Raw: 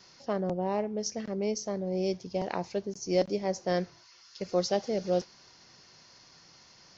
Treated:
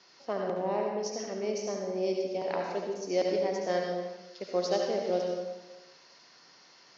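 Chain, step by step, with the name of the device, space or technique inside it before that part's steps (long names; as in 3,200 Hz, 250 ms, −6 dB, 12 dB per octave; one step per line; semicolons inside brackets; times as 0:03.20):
supermarket ceiling speaker (band-pass filter 280–5,100 Hz; convolution reverb RT60 1.1 s, pre-delay 65 ms, DRR 0 dB)
level −1.5 dB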